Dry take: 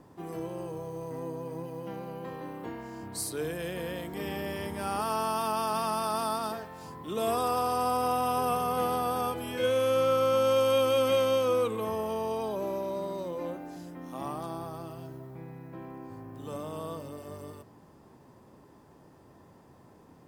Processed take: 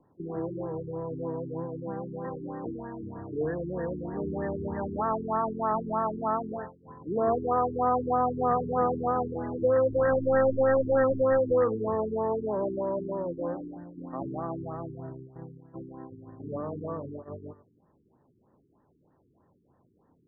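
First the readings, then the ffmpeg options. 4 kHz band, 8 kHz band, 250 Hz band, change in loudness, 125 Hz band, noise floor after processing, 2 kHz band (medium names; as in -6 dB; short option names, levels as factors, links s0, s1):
under -40 dB, under -40 dB, +4.0 dB, +1.5 dB, +3.5 dB, -67 dBFS, 0.0 dB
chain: -filter_complex "[0:a]agate=range=0.2:threshold=0.00794:ratio=16:detection=peak,acrossover=split=270[s0][s1];[s1]aeval=exprs='(mod(9.44*val(0)+1,2)-1)/9.44':c=same[s2];[s0][s2]amix=inputs=2:normalize=0,afftfilt=real='re*lt(b*sr/1024,420*pow(2000/420,0.5+0.5*sin(2*PI*3.2*pts/sr)))':imag='im*lt(b*sr/1024,420*pow(2000/420,0.5+0.5*sin(2*PI*3.2*pts/sr)))':win_size=1024:overlap=0.75,volume=1.58"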